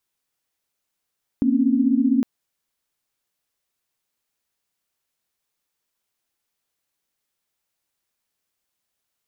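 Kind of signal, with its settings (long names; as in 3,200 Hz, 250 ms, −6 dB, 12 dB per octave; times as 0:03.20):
held notes A#3/C4/C#4 sine, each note −20 dBFS 0.81 s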